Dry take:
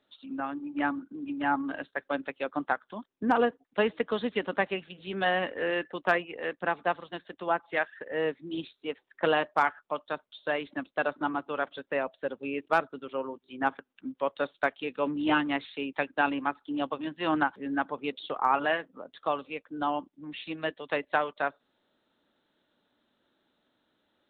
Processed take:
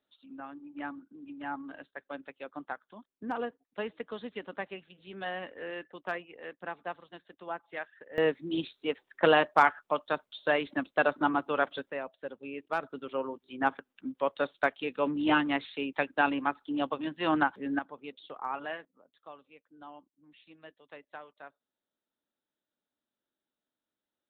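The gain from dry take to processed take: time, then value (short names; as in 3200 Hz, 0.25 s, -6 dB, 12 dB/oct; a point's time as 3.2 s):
-10 dB
from 8.18 s +3 dB
from 11.9 s -7 dB
from 12.83 s 0 dB
from 17.79 s -10.5 dB
from 18.85 s -19 dB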